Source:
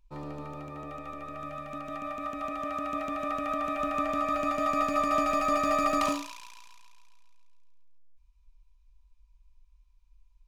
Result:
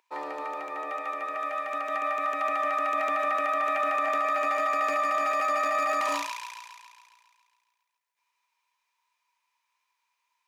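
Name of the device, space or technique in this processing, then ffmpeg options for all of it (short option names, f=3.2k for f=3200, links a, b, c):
laptop speaker: -af "highpass=f=390:w=0.5412,highpass=f=390:w=1.3066,equalizer=f=890:t=o:w=0.51:g=6,equalizer=f=1.9k:t=o:w=0.58:g=9.5,alimiter=level_in=1dB:limit=-24dB:level=0:latency=1:release=12,volume=-1dB,volume=5.5dB"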